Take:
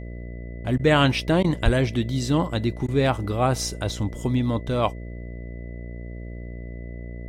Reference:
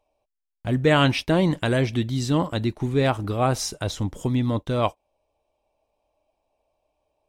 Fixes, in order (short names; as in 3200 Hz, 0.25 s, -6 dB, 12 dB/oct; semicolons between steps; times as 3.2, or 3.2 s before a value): de-hum 59.2 Hz, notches 11; notch 2000 Hz, Q 30; 1.64–1.76 HPF 140 Hz 24 dB/oct; interpolate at 0.78/1.43/2.87, 12 ms